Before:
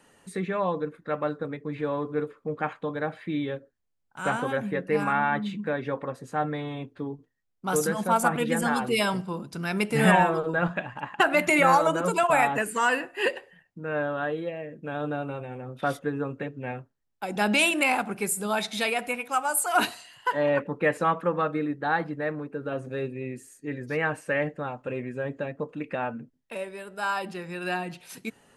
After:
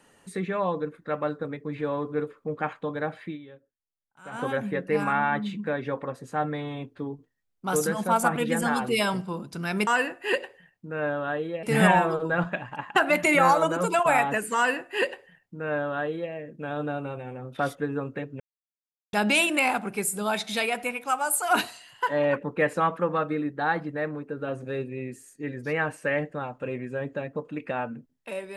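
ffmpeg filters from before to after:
-filter_complex "[0:a]asplit=7[a][b][c][d][e][f][g];[a]atrim=end=3.38,asetpts=PTS-STARTPTS,afade=t=out:st=3.25:d=0.13:silence=0.16788[h];[b]atrim=start=3.38:end=4.31,asetpts=PTS-STARTPTS,volume=-15.5dB[i];[c]atrim=start=4.31:end=9.872,asetpts=PTS-STARTPTS,afade=t=in:d=0.13:silence=0.16788[j];[d]atrim=start=12.798:end=14.562[k];[e]atrim=start=9.868:end=16.64,asetpts=PTS-STARTPTS,afade=t=out:st=6.768:d=0.004:c=hsin[l];[f]atrim=start=16.64:end=17.37,asetpts=PTS-STARTPTS,volume=0[m];[g]atrim=start=17.37,asetpts=PTS-STARTPTS,afade=t=in:d=0.004:c=hsin[n];[h][i][j]concat=n=3:v=0:a=1[o];[o][k]acrossfade=d=0.004:c1=hsin:c2=hsin[p];[l][m][n]concat=n=3:v=0:a=1[q];[p][q]acrossfade=d=0.004:c1=hsin:c2=hsin"

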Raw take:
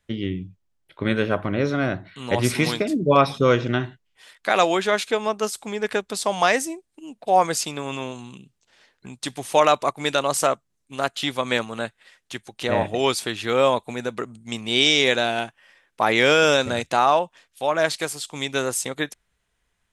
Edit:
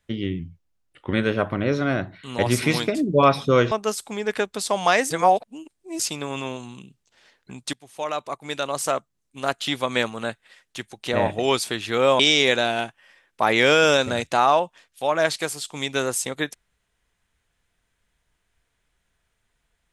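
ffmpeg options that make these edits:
-filter_complex "[0:a]asplit=8[a][b][c][d][e][f][g][h];[a]atrim=end=0.394[i];[b]atrim=start=0.39:end=1.06,asetpts=PTS-STARTPTS,asetrate=39690,aresample=44100[j];[c]atrim=start=1.056:end=3.642[k];[d]atrim=start=5.268:end=6.662[l];[e]atrim=start=6.658:end=7.552,asetpts=PTS-STARTPTS,areverse[m];[f]atrim=start=7.548:end=9.29,asetpts=PTS-STARTPTS,afade=t=out:st=1.738:d=0.004:c=hsin:silence=0.1[n];[g]atrim=start=9.29:end=13.752,asetpts=PTS-STARTPTS,afade=t=in:d=1.82:silence=0.1[o];[h]atrim=start=14.788[p];[i][j]acrossfade=d=0.004:c1=hsin:c2=hsin[q];[q][k]acrossfade=d=0.004:c1=hsin:c2=hsin[r];[r][l]acrossfade=d=0.004:c1=hsin:c2=hsin[s];[s][m]acrossfade=d=0.004:c1=hsin:c2=hsin[t];[n][o]concat=n=2:v=0:a=1[u];[t][u]acrossfade=d=0.004:c1=hsin:c2=hsin[v];[v][p]acrossfade=d=0.004:c1=hsin:c2=hsin"

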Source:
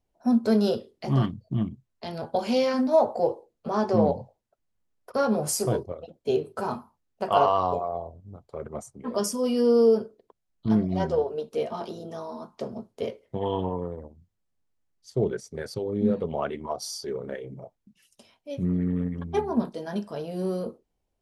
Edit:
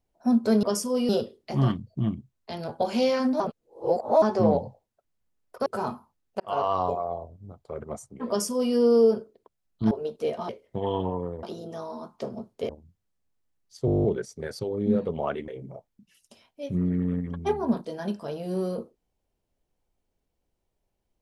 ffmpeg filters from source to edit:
-filter_complex "[0:a]asplit=21[a][b][c][d][e][f][g][h][i][j][k][l][m][n][o][p][q][r][s][t][u];[a]atrim=end=0.632[v];[b]atrim=start=9.118:end=9.582[w];[c]atrim=start=0.628:end=2.942[x];[d]atrim=start=2.938:end=3.762,asetpts=PTS-STARTPTS,areverse[y];[e]atrim=start=3.758:end=5.202[z];[f]atrim=start=6.498:end=7.24,asetpts=PTS-STARTPTS,afade=t=out:st=0.738:d=0.004:c=hsin[aa];[g]atrim=start=7.24:end=10.752,asetpts=PTS-STARTPTS,afade=t=in:d=0.57:c=qsin[ab];[h]atrim=start=11.238:end=11.822[ac];[i]atrim=start=13.078:end=14.022[ad];[j]atrim=start=11.818:end=13.082[ae];[k]atrim=start=14.018:end=15.212[af];[l]atrim=start=15.188:end=15.212[ag];[m]atrim=start=15.188:end=15.212[ah];[n]atrim=start=15.188:end=15.212[ai];[o]atrim=start=15.188:end=15.212[aj];[p]atrim=start=15.188:end=15.212[ak];[q]atrim=start=15.188:end=15.212[al];[r]atrim=start=15.188:end=15.212[am];[s]atrim=start=15.188:end=15.212[an];[t]atrim=start=15.188:end=16.632[ao];[u]atrim=start=17.358[ap];[v][w]acrossfade=d=0.004:c1=hsin:c2=hsin[aq];[aq][x]acrossfade=d=0.004:c1=hsin:c2=hsin[ar];[ar][y]acrossfade=d=0.004:c1=hsin:c2=hsin[as];[as][z]acrossfade=d=0.004:c1=hsin:c2=hsin[at];[aa][ab]concat=n=2:v=0:a=1[au];[at][au]acrossfade=d=0.004:c1=hsin:c2=hsin[av];[av][ac]acrossfade=d=0.004:c1=hsin:c2=hsin[aw];[aw][ad]acrossfade=d=0.004:c1=hsin:c2=hsin[ax];[ax][ae]acrossfade=d=0.004:c1=hsin:c2=hsin[ay];[ay][af]acrossfade=d=0.004:c1=hsin:c2=hsin[az];[az][ag]acrossfade=d=0.004:c1=hsin:c2=hsin[ba];[ba][ah]acrossfade=d=0.004:c1=hsin:c2=hsin[bb];[bb][ai]acrossfade=d=0.004:c1=hsin:c2=hsin[bc];[bc][aj]acrossfade=d=0.004:c1=hsin:c2=hsin[bd];[bd][ak]acrossfade=d=0.004:c1=hsin:c2=hsin[be];[be][al]acrossfade=d=0.004:c1=hsin:c2=hsin[bf];[bf][am]acrossfade=d=0.004:c1=hsin:c2=hsin[bg];[bg][an]acrossfade=d=0.004:c1=hsin:c2=hsin[bh];[bh][ao]acrossfade=d=0.004:c1=hsin:c2=hsin[bi];[bi][ap]acrossfade=d=0.004:c1=hsin:c2=hsin"

